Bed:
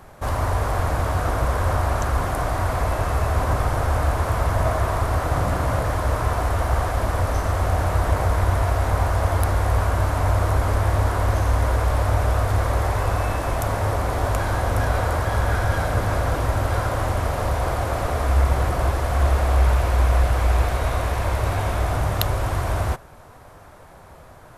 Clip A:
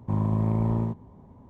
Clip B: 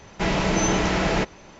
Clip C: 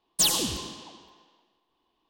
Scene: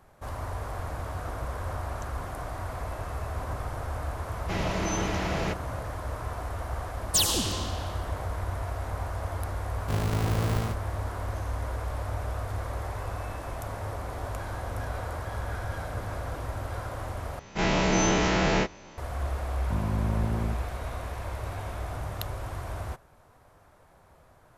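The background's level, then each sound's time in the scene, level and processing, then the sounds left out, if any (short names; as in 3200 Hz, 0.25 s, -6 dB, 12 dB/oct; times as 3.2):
bed -12.5 dB
4.29 add B -8.5 dB
6.95 add C -2 dB + AGC gain up to 6.5 dB
9.8 add A -8 dB + half-waves squared off
17.39 replace with B -5.5 dB + spectral dilation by 60 ms
19.62 add A -5.5 dB + mismatched tape noise reduction encoder only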